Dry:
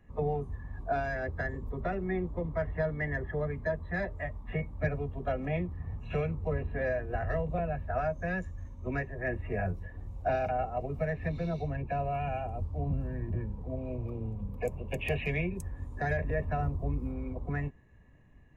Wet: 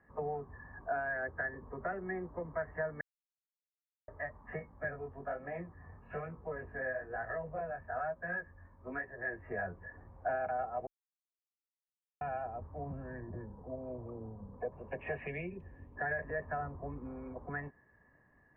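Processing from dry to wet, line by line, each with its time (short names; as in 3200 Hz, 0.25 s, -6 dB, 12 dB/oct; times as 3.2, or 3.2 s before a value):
3.01–4.08 mute
4.59–9.51 chorus 1.1 Hz, delay 16.5 ms, depth 6.7 ms
10.87–12.21 mute
13.2–14.72 LPF 1100 Hz
15.27–15.96 EQ curve 390 Hz 0 dB, 1500 Hz -14 dB, 2800 Hz +11 dB, 6300 Hz -4 dB
whole clip: Chebyshev low-pass 1700 Hz, order 4; tilt +4 dB/oct; compressor 1.5:1, threshold -41 dBFS; gain +2 dB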